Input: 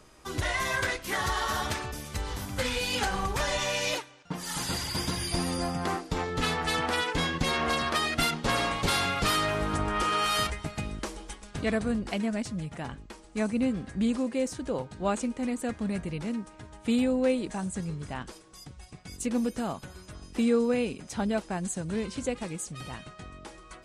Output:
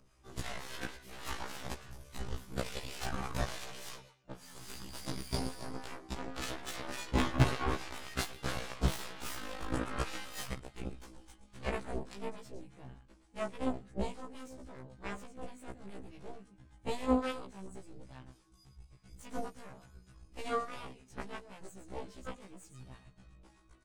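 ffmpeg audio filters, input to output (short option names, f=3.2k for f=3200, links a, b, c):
-filter_complex "[0:a]acompressor=mode=upward:threshold=-48dB:ratio=2.5,lowshelf=f=140:g=11.5,bandreject=f=1.9k:w=27,aecho=1:1:113:0.266,acrossover=split=760[a][b];[a]aeval=exprs='val(0)*(1-0.5/2+0.5/2*cos(2*PI*3.5*n/s))':c=same[c];[b]aeval=exprs='val(0)*(1-0.5/2-0.5/2*cos(2*PI*3.5*n/s))':c=same[d];[c][d]amix=inputs=2:normalize=0,asettb=1/sr,asplit=3[e][f][g];[e]atrim=end=7.174[h];[f]atrim=start=7.17:end=7.76,asetpts=PTS-STARTPTS,afade=t=in:d=0.004:c=qsin,afade=t=out:st=0.586:d=0.004:c=qsin,equalizer=f=125:t=o:w=1:g=10,equalizer=f=250:t=o:w=1:g=7,equalizer=f=500:t=o:w=1:g=-5,equalizer=f=1k:t=o:w=1:g=5,equalizer=f=2k:t=o:w=1:g=-4,equalizer=f=4k:t=o:w=1:g=-5,equalizer=f=8k:t=o:w=1:g=-3[i];[g]atrim=start=7.756[j];[h][i]acrossfade=d=0.004:c1=hsin:c2=qsin[k];[k][j]acrossfade=d=0.004:c1=qsin:c2=hsin,asettb=1/sr,asplit=3[l][m][n];[l]atrim=end=8.944[o];[m]atrim=start=8.94:end=9.73,asetpts=PTS-STARTPTS,afade=t=in:d=0.004:c=qsin,afade=t=out:st=0.786:d=0.004:c=qsin,aeval=exprs='0.0944*(abs(mod(val(0)/0.0944+3,4)-2)-1)':c=same[p];[n]atrim=start=9.726[q];[o][p]acrossfade=d=0.004:c1=hsin:c2=qsin[r];[r][q]acrossfade=d=0.004:c1=qsin:c2=hsin,aeval=exprs='0.316*(cos(1*acos(clip(val(0)/0.316,-1,1)))-cos(1*PI/2))+0.1*(cos(4*acos(clip(val(0)/0.316,-1,1)))-cos(4*PI/2))+0.0158*(cos(5*acos(clip(val(0)/0.316,-1,1)))-cos(5*PI/2))+0.0794*(cos(6*acos(clip(val(0)/0.316,-1,1)))-cos(6*PI/2))+0.0708*(cos(7*acos(clip(val(0)/0.316,-1,1)))-cos(7*PI/2))':c=same,afftfilt=real='re*1.73*eq(mod(b,3),0)':imag='im*1.73*eq(mod(b,3),0)':win_size=2048:overlap=0.75,volume=-3.5dB"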